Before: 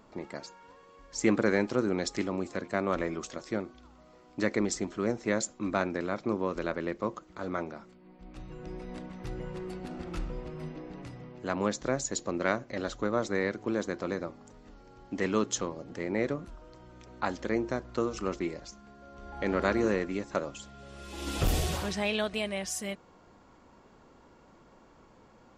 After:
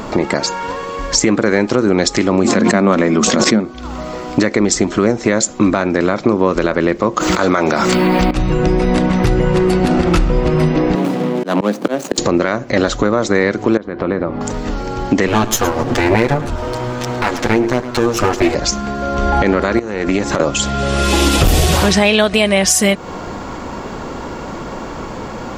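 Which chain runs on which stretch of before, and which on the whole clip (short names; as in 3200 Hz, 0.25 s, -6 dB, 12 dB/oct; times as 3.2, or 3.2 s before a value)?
2.44–3.65 HPF 97 Hz + bell 220 Hz +12.5 dB 0.35 oct + backwards sustainer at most 37 dB/s
7.17–8.31 tilt +2 dB/oct + fast leveller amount 70%
10.95–12.18 median filter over 25 samples + steep high-pass 170 Hz 48 dB/oct + auto swell 0.431 s
13.77–14.41 compressor 3:1, threshold -47 dBFS + air absorption 390 m
15.27–18.55 minimum comb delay 8.3 ms + echo 0.109 s -18.5 dB
19.79–20.4 compressor 16:1, threshold -37 dBFS + tube stage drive 32 dB, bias 0.5
whole clip: compressor 6:1, threshold -41 dBFS; maximiser +32.5 dB; gain -1 dB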